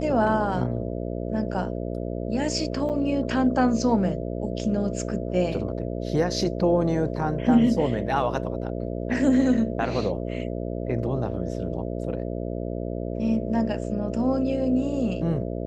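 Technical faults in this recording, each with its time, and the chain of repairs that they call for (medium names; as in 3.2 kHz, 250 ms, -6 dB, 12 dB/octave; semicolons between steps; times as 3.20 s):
buzz 60 Hz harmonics 11 -30 dBFS
2.89–2.90 s: dropout 7.9 ms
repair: de-hum 60 Hz, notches 11; interpolate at 2.89 s, 7.9 ms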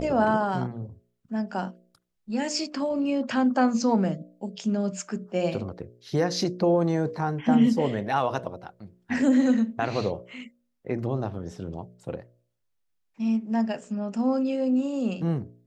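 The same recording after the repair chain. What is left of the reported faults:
nothing left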